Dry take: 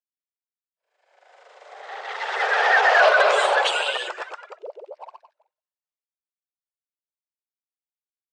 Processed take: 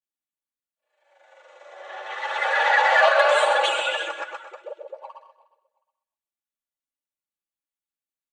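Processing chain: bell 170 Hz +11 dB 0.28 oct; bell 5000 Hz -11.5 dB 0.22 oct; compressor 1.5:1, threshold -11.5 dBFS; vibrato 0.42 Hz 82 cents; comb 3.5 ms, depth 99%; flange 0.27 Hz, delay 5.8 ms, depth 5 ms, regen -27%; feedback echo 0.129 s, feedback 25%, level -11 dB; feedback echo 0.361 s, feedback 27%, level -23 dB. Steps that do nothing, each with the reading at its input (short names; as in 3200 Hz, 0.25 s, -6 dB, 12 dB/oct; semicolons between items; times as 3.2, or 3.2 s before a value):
bell 170 Hz: input band starts at 340 Hz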